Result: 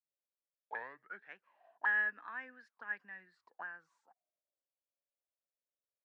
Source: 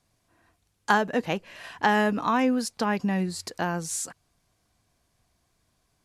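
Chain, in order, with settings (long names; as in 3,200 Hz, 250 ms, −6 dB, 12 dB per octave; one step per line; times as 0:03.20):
turntable start at the beginning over 1.41 s
low-shelf EQ 220 Hz +12 dB
envelope filter 550–1,700 Hz, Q 10, up, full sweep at −20 dBFS
three-way crossover with the lows and the highs turned down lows −17 dB, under 200 Hz, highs −12 dB, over 4,900 Hz
multiband upward and downward expander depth 40%
level −4 dB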